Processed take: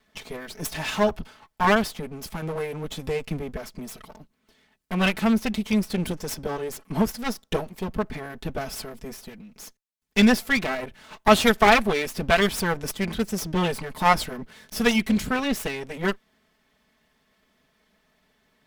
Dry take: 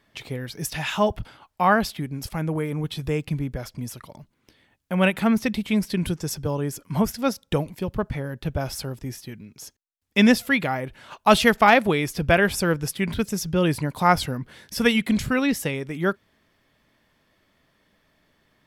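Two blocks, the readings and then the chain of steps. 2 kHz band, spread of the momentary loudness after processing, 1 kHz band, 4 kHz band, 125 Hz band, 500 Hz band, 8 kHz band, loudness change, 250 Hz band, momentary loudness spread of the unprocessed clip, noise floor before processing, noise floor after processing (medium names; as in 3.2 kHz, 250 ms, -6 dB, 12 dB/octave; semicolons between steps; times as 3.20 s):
-1.0 dB, 19 LU, -1.0 dB, +0.5 dB, -4.5 dB, -1.0 dB, -1.0 dB, -1.0 dB, -1.5 dB, 17 LU, -70 dBFS, -69 dBFS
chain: comb filter that takes the minimum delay 4.6 ms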